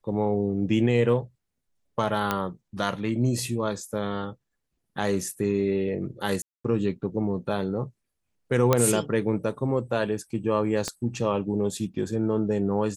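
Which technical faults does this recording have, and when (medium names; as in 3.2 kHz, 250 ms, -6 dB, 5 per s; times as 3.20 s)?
2.31 s: pop -10 dBFS
6.42–6.64 s: dropout 225 ms
8.73 s: pop -6 dBFS
10.88 s: pop -14 dBFS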